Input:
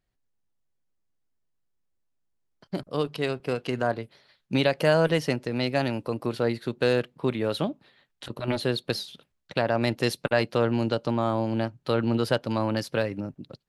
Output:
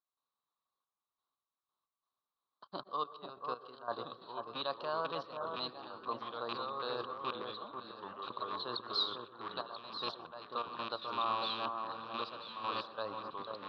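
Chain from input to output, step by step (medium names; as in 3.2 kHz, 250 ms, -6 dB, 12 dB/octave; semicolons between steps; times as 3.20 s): rattle on loud lows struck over -26 dBFS, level -13 dBFS; reverse; compression 6:1, threshold -31 dBFS, peak gain reduction 14.5 dB; reverse; trance gate ".xxxx..x..x.x" 89 bpm -12 dB; ever faster or slower copies 794 ms, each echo -3 st, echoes 2, each echo -6 dB; two resonant band-passes 2.1 kHz, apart 1.8 oct; distance through air 310 m; echo whose repeats swap between lows and highs 493 ms, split 1.5 kHz, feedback 52%, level -5.5 dB; on a send at -17 dB: reverberation RT60 0.50 s, pre-delay 112 ms; on the sum: trim +15.5 dB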